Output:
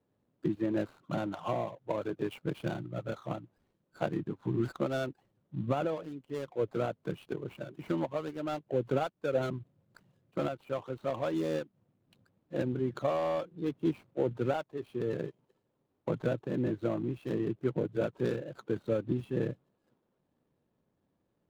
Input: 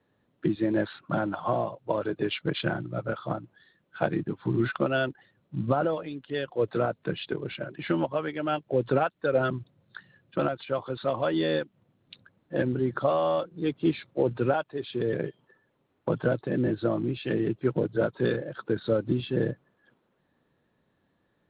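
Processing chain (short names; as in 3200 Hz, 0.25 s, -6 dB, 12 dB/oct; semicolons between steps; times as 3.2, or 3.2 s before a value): median filter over 25 samples; gain -5 dB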